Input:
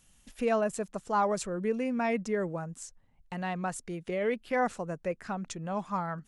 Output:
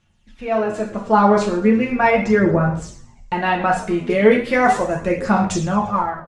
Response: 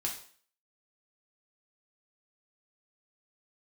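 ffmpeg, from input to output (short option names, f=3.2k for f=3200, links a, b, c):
-filter_complex "[1:a]atrim=start_sample=2205[a];[0:a][a]afir=irnorm=-1:irlink=0,dynaudnorm=f=280:g=5:m=15.5dB,asetnsamples=n=441:p=0,asendcmd='4.1 lowpass f 9200;5.74 lowpass f 2800',lowpass=3.7k,asplit=5[b][c][d][e][f];[c]adelay=116,afreqshift=-100,volume=-20dB[g];[d]adelay=232,afreqshift=-200,volume=-25.2dB[h];[e]adelay=348,afreqshift=-300,volume=-30.4dB[i];[f]adelay=464,afreqshift=-400,volume=-35.6dB[j];[b][g][h][i][j]amix=inputs=5:normalize=0,aphaser=in_gain=1:out_gain=1:delay=4.8:decay=0.42:speed=0.37:type=sinusoidal,volume=-1dB"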